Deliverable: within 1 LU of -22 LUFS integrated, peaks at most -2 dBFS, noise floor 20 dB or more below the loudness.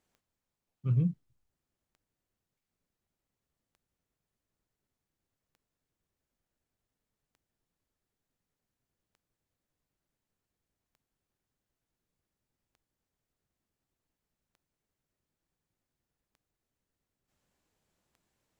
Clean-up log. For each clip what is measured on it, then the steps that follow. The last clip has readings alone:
clicks 11; loudness -31.5 LUFS; peak -18.0 dBFS; loudness target -22.0 LUFS
-> de-click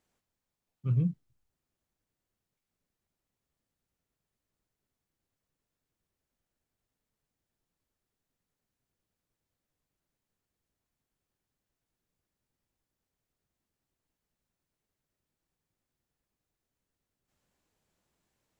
clicks 0; loudness -31.5 LUFS; peak -18.0 dBFS; loudness target -22.0 LUFS
-> gain +9.5 dB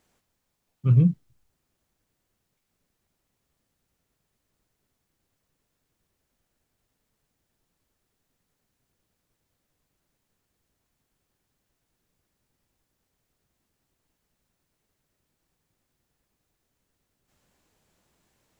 loudness -22.0 LUFS; peak -8.5 dBFS; noise floor -79 dBFS

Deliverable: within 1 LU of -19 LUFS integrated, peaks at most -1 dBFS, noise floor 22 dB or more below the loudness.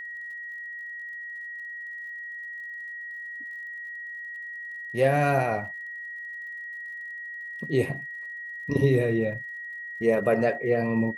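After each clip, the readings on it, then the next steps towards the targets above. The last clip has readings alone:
ticks 54/s; steady tone 1900 Hz; tone level -35 dBFS; loudness -29.5 LUFS; peak -9.5 dBFS; loudness target -19.0 LUFS
-> de-click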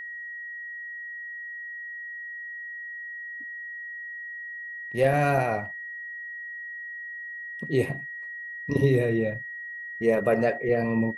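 ticks 0.090/s; steady tone 1900 Hz; tone level -35 dBFS
-> notch 1900 Hz, Q 30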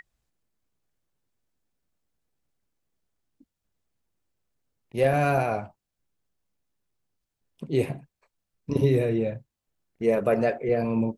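steady tone none; loudness -25.5 LUFS; peak -10.0 dBFS; loudness target -19.0 LUFS
-> gain +6.5 dB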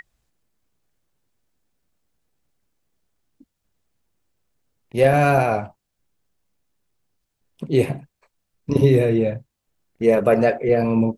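loudness -19.0 LUFS; peak -3.5 dBFS; noise floor -78 dBFS

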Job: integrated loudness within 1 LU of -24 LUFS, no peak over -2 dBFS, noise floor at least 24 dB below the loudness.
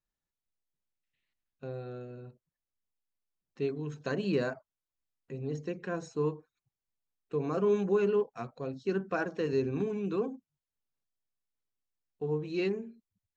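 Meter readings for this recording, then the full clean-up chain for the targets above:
loudness -33.0 LUFS; peak -17.0 dBFS; loudness target -24.0 LUFS
-> gain +9 dB

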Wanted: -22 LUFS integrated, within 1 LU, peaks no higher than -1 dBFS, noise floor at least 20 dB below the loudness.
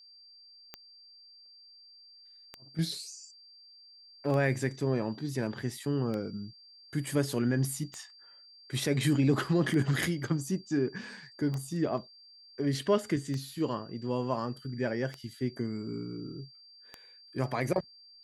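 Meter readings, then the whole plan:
clicks 10; steady tone 4700 Hz; tone level -53 dBFS; loudness -32.0 LUFS; peak -14.0 dBFS; loudness target -22.0 LUFS
-> de-click; notch 4700 Hz, Q 30; gain +10 dB

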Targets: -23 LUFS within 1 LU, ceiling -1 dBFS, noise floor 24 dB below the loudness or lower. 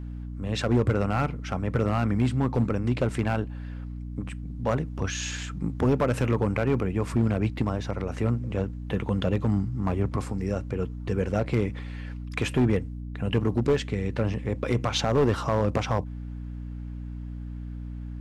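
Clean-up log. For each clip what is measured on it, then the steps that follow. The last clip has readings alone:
clipped 0.9%; flat tops at -16.0 dBFS; hum 60 Hz; harmonics up to 300 Hz; hum level -33 dBFS; loudness -27.5 LUFS; peak -16.0 dBFS; loudness target -23.0 LUFS
-> clip repair -16 dBFS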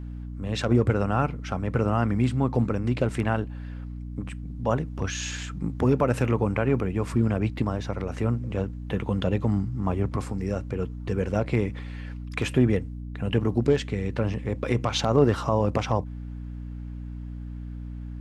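clipped 0.0%; hum 60 Hz; harmonics up to 300 Hz; hum level -33 dBFS
-> de-hum 60 Hz, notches 5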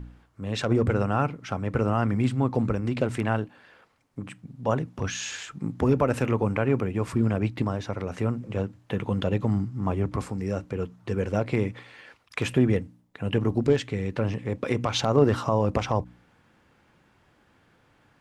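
hum none; loudness -27.0 LUFS; peak -7.0 dBFS; loudness target -23.0 LUFS
-> gain +4 dB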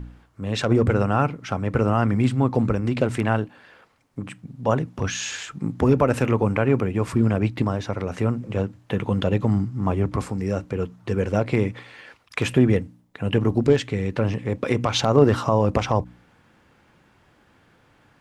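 loudness -23.0 LUFS; peak -3.0 dBFS; noise floor -59 dBFS

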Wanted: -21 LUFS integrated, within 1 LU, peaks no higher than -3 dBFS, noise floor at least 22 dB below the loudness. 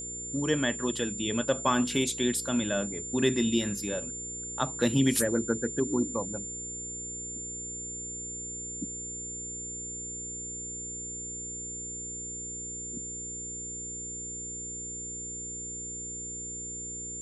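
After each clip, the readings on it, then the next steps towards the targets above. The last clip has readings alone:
hum 60 Hz; harmonics up to 480 Hz; hum level -45 dBFS; steady tone 7200 Hz; tone level -36 dBFS; loudness -31.5 LUFS; peak -11.5 dBFS; loudness target -21.0 LUFS
-> de-hum 60 Hz, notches 8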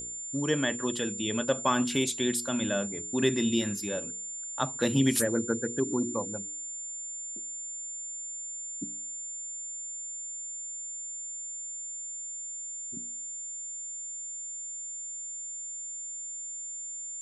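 hum none; steady tone 7200 Hz; tone level -36 dBFS
-> notch 7200 Hz, Q 30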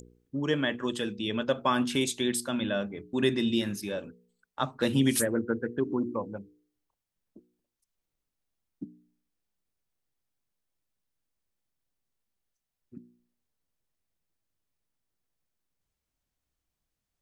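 steady tone none; loudness -29.5 LUFS; peak -12.0 dBFS; loudness target -21.0 LUFS
-> gain +8.5 dB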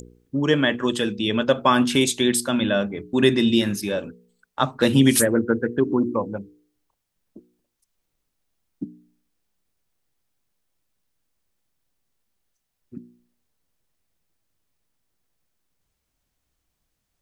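loudness -21.0 LUFS; peak -3.5 dBFS; noise floor -78 dBFS

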